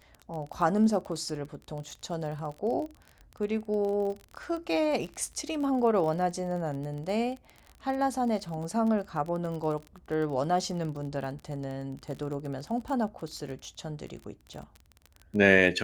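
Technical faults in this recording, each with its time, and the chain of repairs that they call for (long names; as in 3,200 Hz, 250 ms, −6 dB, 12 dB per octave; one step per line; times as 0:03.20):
surface crackle 30 per second −35 dBFS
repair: click removal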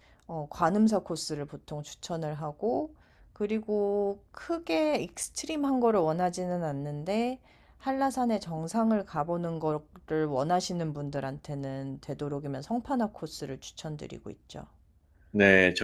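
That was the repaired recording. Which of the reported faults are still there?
none of them is left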